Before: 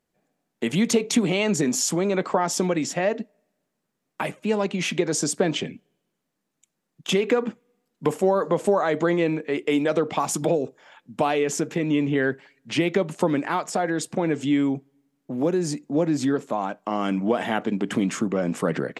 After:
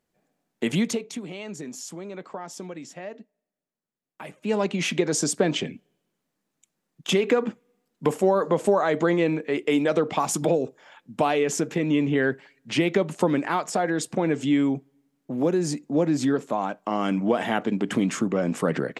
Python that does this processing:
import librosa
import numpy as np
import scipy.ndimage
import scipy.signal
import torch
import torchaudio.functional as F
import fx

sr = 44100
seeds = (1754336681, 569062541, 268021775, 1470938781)

y = fx.edit(x, sr, fx.fade_down_up(start_s=0.75, length_s=3.81, db=-14.0, fade_s=0.44, curve='qua'), tone=tone)